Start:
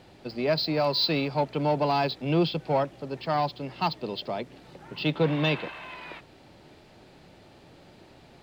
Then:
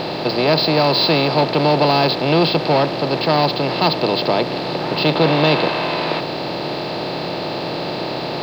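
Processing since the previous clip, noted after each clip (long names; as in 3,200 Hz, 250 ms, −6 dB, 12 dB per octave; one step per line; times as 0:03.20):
compressor on every frequency bin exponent 0.4
level +5 dB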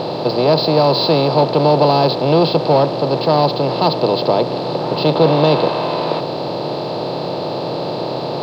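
octave-band graphic EQ 125/250/500/1,000/2,000/4,000/8,000 Hz +9/+3/+9/+7/−6/+4/+4 dB
level −6 dB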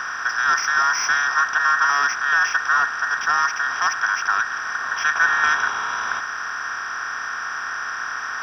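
frequency inversion band by band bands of 2,000 Hz
level −6 dB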